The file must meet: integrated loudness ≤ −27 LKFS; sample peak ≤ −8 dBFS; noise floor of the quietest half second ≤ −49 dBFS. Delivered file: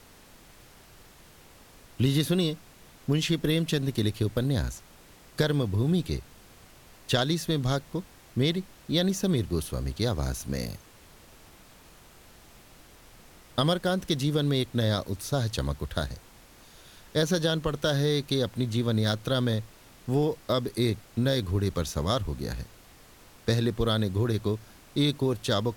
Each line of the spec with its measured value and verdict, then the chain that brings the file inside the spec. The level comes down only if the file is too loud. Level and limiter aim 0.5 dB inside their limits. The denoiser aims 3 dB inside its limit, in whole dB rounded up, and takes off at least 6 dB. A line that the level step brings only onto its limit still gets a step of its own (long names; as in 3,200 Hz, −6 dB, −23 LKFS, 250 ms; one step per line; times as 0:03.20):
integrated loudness −28.0 LKFS: in spec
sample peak −10.5 dBFS: in spec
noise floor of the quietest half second −53 dBFS: in spec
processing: no processing needed